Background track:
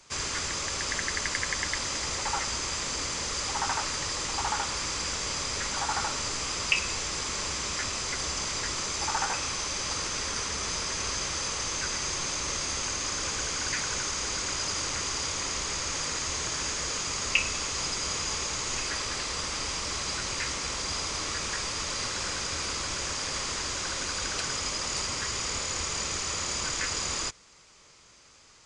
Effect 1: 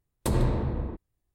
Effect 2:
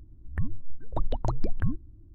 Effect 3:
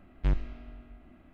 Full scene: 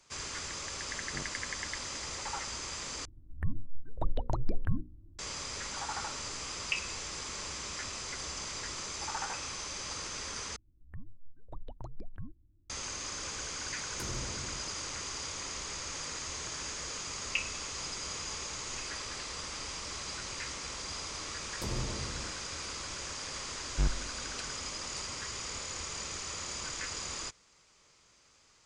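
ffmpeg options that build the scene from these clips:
ffmpeg -i bed.wav -i cue0.wav -i cue1.wav -i cue2.wav -filter_complex "[3:a]asplit=2[link_01][link_02];[2:a]asplit=2[link_03][link_04];[1:a]asplit=2[link_05][link_06];[0:a]volume=-8dB[link_07];[link_01]highpass=160[link_08];[link_03]bandreject=frequency=60:width_type=h:width=6,bandreject=frequency=120:width_type=h:width=6,bandreject=frequency=180:width_type=h:width=6,bandreject=frequency=240:width_type=h:width=6,bandreject=frequency=300:width_type=h:width=6,bandreject=frequency=360:width_type=h:width=6,bandreject=frequency=420:width_type=h:width=6,bandreject=frequency=480:width_type=h:width=6,bandreject=frequency=540:width_type=h:width=6[link_09];[link_05]bass=frequency=250:gain=0,treble=frequency=4000:gain=3[link_10];[link_07]asplit=3[link_11][link_12][link_13];[link_11]atrim=end=3.054[link_14];[link_09]atrim=end=2.14,asetpts=PTS-STARTPTS,volume=-3.5dB[link_15];[link_12]atrim=start=5.186:end=10.564[link_16];[link_04]atrim=end=2.14,asetpts=PTS-STARTPTS,volume=-16.5dB[link_17];[link_13]atrim=start=12.696[link_18];[link_08]atrim=end=1.33,asetpts=PTS-STARTPTS,volume=-7.5dB,afade=type=in:duration=0.004:curve=hsin,afade=type=out:start_time=1.326:duration=0.004:curve=hsin,adelay=890[link_19];[link_10]atrim=end=1.34,asetpts=PTS-STARTPTS,volume=-16dB,afade=type=in:duration=0.004:curve=hsin,afade=type=out:start_time=1.336:duration=0.004:curve=hsin,adelay=13740[link_20];[link_06]atrim=end=1.34,asetpts=PTS-STARTPTS,volume=-12dB,afade=type=in:duration=0.004:curve=hsin,afade=type=out:start_time=1.336:duration=0.004:curve=hsin,adelay=21360[link_21];[link_02]atrim=end=1.33,asetpts=PTS-STARTPTS,volume=-3dB,afade=type=in:duration=0.004:curve=hsin,afade=type=out:start_time=1.326:duration=0.004:curve=hsin,adelay=23540[link_22];[link_14][link_15]acrossfade=duration=0.004:curve1=hsin:curve2=hsin[link_23];[link_23][link_16]acrossfade=duration=0.004:curve1=hsin:curve2=hsin[link_24];[link_24][link_17]acrossfade=duration=0.004:curve1=hsin:curve2=hsin[link_25];[link_25][link_18]acrossfade=duration=0.004:curve1=hsin:curve2=hsin[link_26];[link_26][link_19][link_20][link_21][link_22]amix=inputs=5:normalize=0" out.wav

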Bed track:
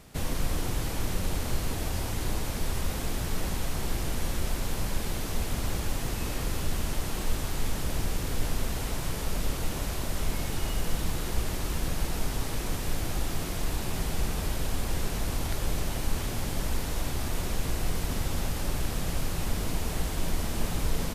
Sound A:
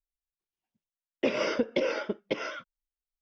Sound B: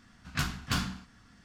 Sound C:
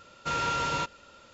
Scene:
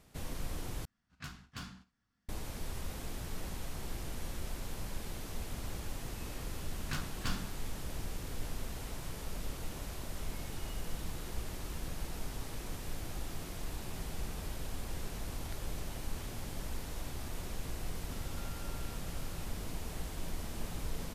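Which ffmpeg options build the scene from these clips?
ffmpeg -i bed.wav -i cue0.wav -i cue1.wav -i cue2.wav -filter_complex "[2:a]asplit=2[link_01][link_02];[0:a]volume=-10.5dB[link_03];[link_01]agate=range=-9dB:threshold=-46dB:ratio=16:release=100:detection=peak[link_04];[3:a]acompressor=threshold=-48dB:ratio=6:attack=3.2:release=140:knee=1:detection=peak[link_05];[link_03]asplit=2[link_06][link_07];[link_06]atrim=end=0.854[link_08];[link_04]atrim=end=1.44,asetpts=PTS-STARTPTS,volume=-15dB[link_09];[link_07]atrim=start=2.286[link_10];[link_02]atrim=end=1.44,asetpts=PTS-STARTPTS,volume=-8.5dB,afade=type=in:duration=0.004:curve=hsin,afade=type=out:start_time=1.436:duration=0.004:curve=hsin,adelay=6540[link_11];[link_05]atrim=end=1.33,asetpts=PTS-STARTPTS,volume=-6.5dB,afade=type=in:duration=0.004:curve=hsin,afade=type=out:start_time=1.326:duration=0.004:curve=hsin,adelay=799092S[link_12];[link_08][link_09]acrossfade=duration=0.004:curve1=hsin:curve2=hsin[link_13];[link_13][link_10]acrossfade=duration=0.004:curve1=hsin:curve2=hsin[link_14];[link_14][link_11][link_12]amix=inputs=3:normalize=0" out.wav

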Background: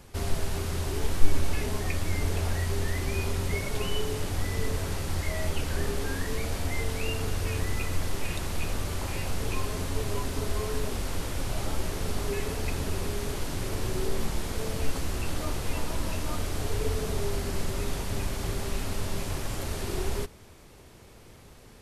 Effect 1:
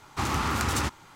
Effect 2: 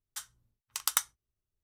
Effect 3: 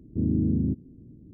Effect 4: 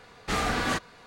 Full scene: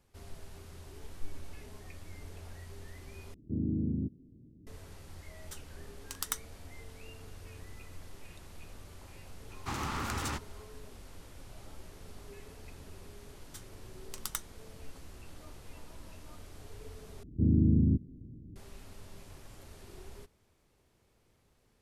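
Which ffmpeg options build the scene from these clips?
ffmpeg -i bed.wav -i cue0.wav -i cue1.wav -i cue2.wav -filter_complex "[3:a]asplit=2[link_01][link_02];[2:a]asplit=2[link_03][link_04];[0:a]volume=-19dB[link_05];[link_02]lowshelf=frequency=140:gain=10[link_06];[link_05]asplit=3[link_07][link_08][link_09];[link_07]atrim=end=3.344[link_10];[link_01]atrim=end=1.33,asetpts=PTS-STARTPTS,volume=-8dB[link_11];[link_08]atrim=start=4.666:end=17.234[link_12];[link_06]atrim=end=1.33,asetpts=PTS-STARTPTS,volume=-5dB[link_13];[link_09]atrim=start=18.556[link_14];[link_03]atrim=end=1.63,asetpts=PTS-STARTPTS,volume=-7.5dB,afade=type=in:duration=0.004:curve=hsin,afade=type=out:start_time=1.626:duration=0.004:curve=hsin,adelay=5350[link_15];[1:a]atrim=end=1.15,asetpts=PTS-STARTPTS,volume=-8.5dB,afade=type=in:duration=0.004:curve=hsin,afade=type=out:start_time=1.146:duration=0.004:curve=hsin,adelay=9490[link_16];[link_04]atrim=end=1.63,asetpts=PTS-STARTPTS,volume=-9.5dB,afade=type=in:duration=0.004:curve=hsin,afade=type=out:start_time=1.626:duration=0.004:curve=hsin,adelay=13380[link_17];[link_10][link_11]acrossfade=duration=0.004:curve1=hsin:curve2=hsin[link_18];[link_18][link_12]acrossfade=duration=0.004:curve1=hsin:curve2=hsin[link_19];[link_19][link_13]acrossfade=duration=0.004:curve1=hsin:curve2=hsin[link_20];[link_20][link_14]acrossfade=duration=0.004:curve1=hsin:curve2=hsin[link_21];[link_21][link_15][link_16][link_17]amix=inputs=4:normalize=0" out.wav

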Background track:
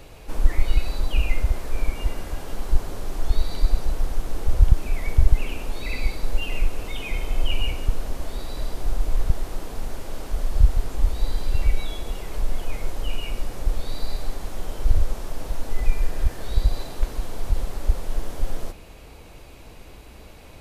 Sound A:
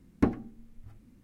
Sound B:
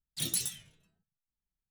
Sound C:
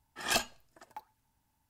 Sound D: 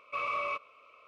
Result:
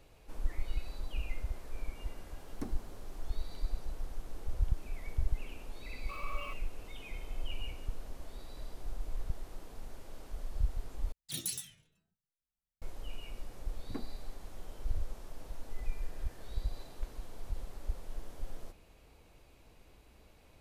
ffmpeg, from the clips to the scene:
ffmpeg -i bed.wav -i cue0.wav -i cue1.wav -i cue2.wav -i cue3.wav -filter_complex "[1:a]asplit=2[link_01][link_02];[0:a]volume=-16dB[link_03];[link_01]aexciter=amount=5.2:drive=6.9:freq=4200[link_04];[4:a]aeval=exprs='val(0)*gte(abs(val(0)),0.00473)':channel_layout=same[link_05];[link_02]acrossover=split=180[link_06][link_07];[link_07]adelay=50[link_08];[link_06][link_08]amix=inputs=2:normalize=0[link_09];[link_03]asplit=2[link_10][link_11];[link_10]atrim=end=11.124[link_12];[2:a]atrim=end=1.7,asetpts=PTS-STARTPTS,volume=-5.5dB[link_13];[link_11]atrim=start=12.816[link_14];[link_04]atrim=end=1.23,asetpts=PTS-STARTPTS,volume=-17dB,afade=type=in:duration=0.004:curve=hsin,afade=type=out:start_time=1.226:duration=0.004:curve=hsin,adelay=2390[link_15];[link_05]atrim=end=1.07,asetpts=PTS-STARTPTS,volume=-11dB,afade=type=in:duration=0.004:curve=hsin,afade=type=out:start_time=1.066:duration=0.004:curve=hsin,adelay=5960[link_16];[link_09]atrim=end=1.23,asetpts=PTS-STARTPTS,volume=-16dB,afade=type=in:duration=0.004:curve=hsin,afade=type=out:start_time=1.226:duration=0.004:curve=hsin,adelay=13670[link_17];[link_12][link_13]acrossfade=duration=0.004:curve1=hsin:curve2=hsin[link_18];[link_18][link_14]acrossfade=duration=0.004:curve1=hsin:curve2=hsin[link_19];[link_19][link_15][link_16][link_17]amix=inputs=4:normalize=0" out.wav

